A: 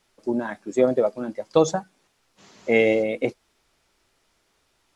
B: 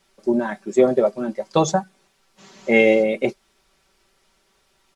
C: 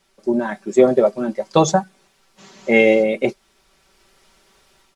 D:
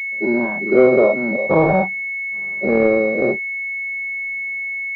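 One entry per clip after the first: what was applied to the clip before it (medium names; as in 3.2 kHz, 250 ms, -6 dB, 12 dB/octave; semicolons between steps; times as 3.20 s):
comb 5.2 ms; trim +2.5 dB
level rider gain up to 7.5 dB
every event in the spectrogram widened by 120 ms; class-D stage that switches slowly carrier 2.2 kHz; trim -3.5 dB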